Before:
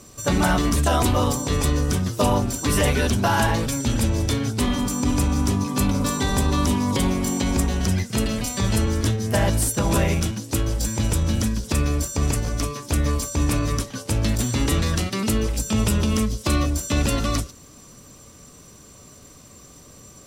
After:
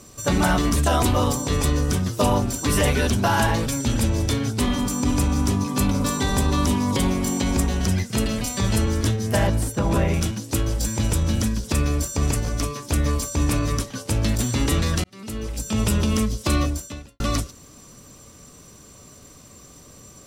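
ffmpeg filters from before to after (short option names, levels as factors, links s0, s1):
-filter_complex "[0:a]asettb=1/sr,asplit=3[s0][s1][s2];[s0]atrim=end=9.474[s3];[s1]atrim=start=9.47:end=10.14,asetpts=PTS-STARTPTS,afade=t=in:d=0.004:c=qsin,afade=t=out:st=0.666:d=0.004:c=qsin,highshelf=f=3000:g=-10[s4];[s2]atrim=start=10.136[s5];[s3][s4]acrossfade=d=0.004:c1=hsin:c2=qsin[s6];[s6][s5]acrossfade=d=0.004:c1=qsin:c2=hsin,asplit=3[s7][s8][s9];[s7]atrim=end=15.04,asetpts=PTS-STARTPTS,afade=t=out:st=15.036:d=0.004:c=hsin[s10];[s8]atrim=start=15.04:end=17.2,asetpts=PTS-STARTPTS,afade=t=in:d=0.88,afade=t=out:st=1.61:d=0.55:c=qua[s11];[s9]atrim=start=17.2,asetpts=PTS-STARTPTS,afade=t=in:d=0.004:c=hsin[s12];[s10][s11][s12]concat=n=3:v=0:a=1"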